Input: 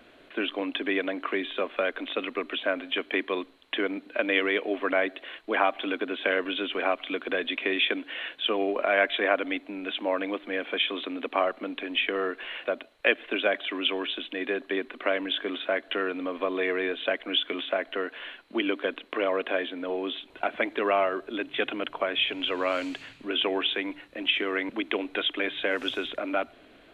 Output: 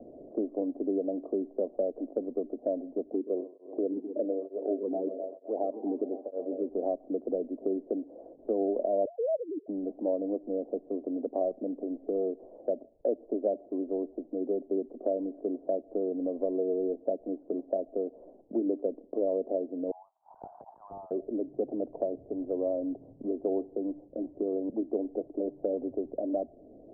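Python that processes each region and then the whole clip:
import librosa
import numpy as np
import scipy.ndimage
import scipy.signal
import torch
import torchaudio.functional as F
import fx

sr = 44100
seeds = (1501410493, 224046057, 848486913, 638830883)

y = fx.chain(x, sr, fx.echo_heads(ms=128, heads='first and second', feedback_pct=57, wet_db=-14.0),
    fx.flanger_cancel(hz=1.1, depth_ms=1.9), at=(3.13, 6.69))
y = fx.chain(y, sr, fx.sine_speech(),
    fx.low_shelf(hz=440.0, db=-10.0),
    fx.band_squash(depth_pct=70), at=(9.05, 9.68))
y = fx.chain(y, sr, fx.steep_highpass(hz=850.0, slope=72),
    fx.clip_hard(threshold_db=-21.5),
    fx.pre_swell(db_per_s=27.0), at=(19.91, 21.11))
y = scipy.signal.sosfilt(scipy.signal.butter(8, 670.0, 'lowpass', fs=sr, output='sos'), y)
y = fx.band_squash(y, sr, depth_pct=40)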